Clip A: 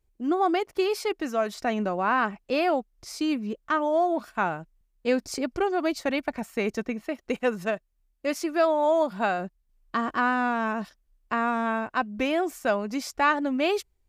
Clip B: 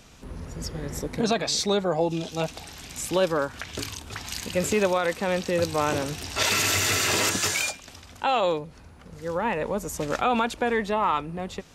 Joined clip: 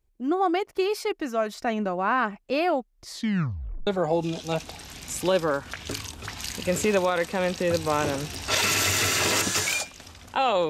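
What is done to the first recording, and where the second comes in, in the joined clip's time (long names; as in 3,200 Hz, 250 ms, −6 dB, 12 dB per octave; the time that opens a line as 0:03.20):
clip A
0:03.03: tape stop 0.84 s
0:03.87: continue with clip B from 0:01.75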